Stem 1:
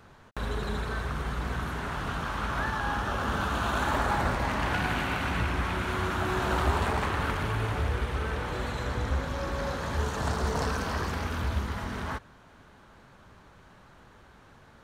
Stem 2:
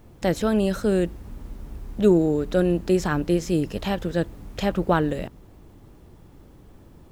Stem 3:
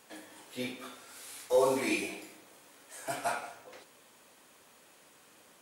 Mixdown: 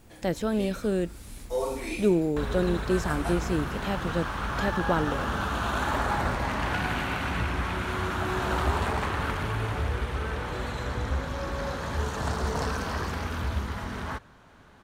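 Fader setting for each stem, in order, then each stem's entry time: 0.0 dB, -5.5 dB, -3.5 dB; 2.00 s, 0.00 s, 0.00 s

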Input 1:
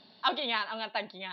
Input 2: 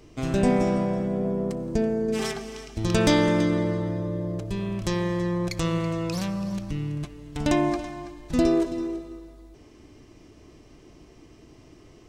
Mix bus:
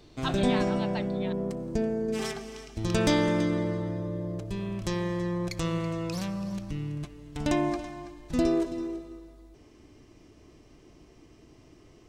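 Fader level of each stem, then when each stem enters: -5.5 dB, -4.0 dB; 0.00 s, 0.00 s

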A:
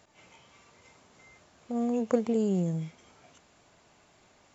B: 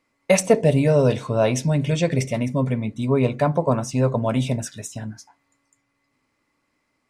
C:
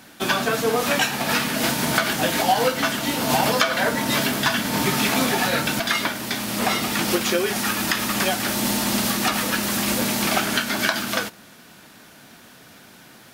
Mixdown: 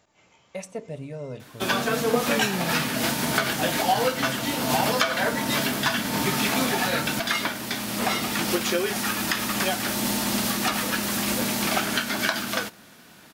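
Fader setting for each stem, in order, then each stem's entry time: -2.5 dB, -18.5 dB, -3.0 dB; 0.00 s, 0.25 s, 1.40 s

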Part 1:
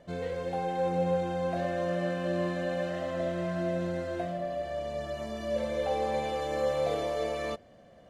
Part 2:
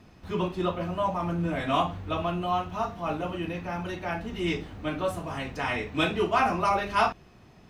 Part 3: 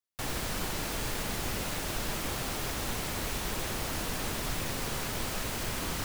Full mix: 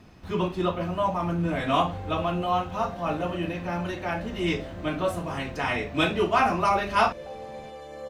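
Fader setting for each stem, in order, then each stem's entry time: -9.5 dB, +2.0 dB, mute; 1.40 s, 0.00 s, mute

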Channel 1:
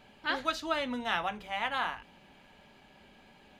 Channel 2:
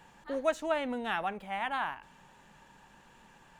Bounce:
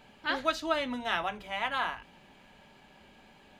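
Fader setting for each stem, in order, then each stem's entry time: +0.5 dB, -9.5 dB; 0.00 s, 0.00 s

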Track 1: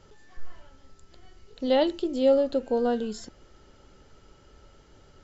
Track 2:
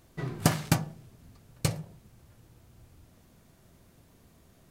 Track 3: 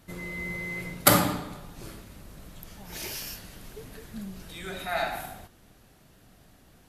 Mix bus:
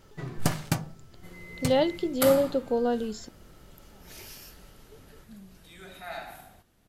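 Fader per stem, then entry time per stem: -1.0 dB, -2.5 dB, -9.5 dB; 0.00 s, 0.00 s, 1.15 s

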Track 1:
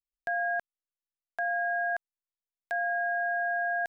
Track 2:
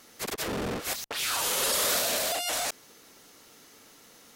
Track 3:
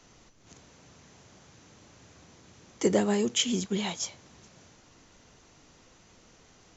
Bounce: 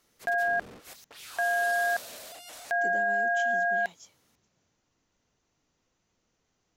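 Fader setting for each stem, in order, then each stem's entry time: +3.0 dB, -16.0 dB, -18.5 dB; 0.00 s, 0.00 s, 0.00 s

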